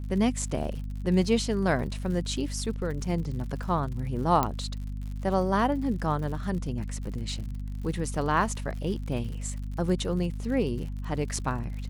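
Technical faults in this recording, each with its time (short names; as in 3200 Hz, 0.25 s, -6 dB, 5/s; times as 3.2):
crackle 87/s -37 dBFS
hum 50 Hz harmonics 5 -34 dBFS
4.43 pop -11 dBFS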